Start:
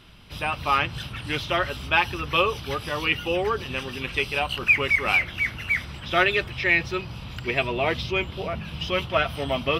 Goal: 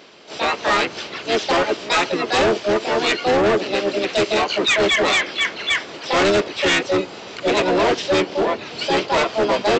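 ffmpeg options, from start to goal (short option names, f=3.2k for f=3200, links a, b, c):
-filter_complex "[0:a]highpass=f=410:t=q:w=4.9,asplit=4[a][b][c][d];[b]asetrate=22050,aresample=44100,atempo=2,volume=-11dB[e];[c]asetrate=35002,aresample=44100,atempo=1.25992,volume=-5dB[f];[d]asetrate=66075,aresample=44100,atempo=0.66742,volume=-2dB[g];[a][e][f][g]amix=inputs=4:normalize=0,aresample=16000,volume=17dB,asoftclip=hard,volume=-17dB,aresample=44100,volume=3dB"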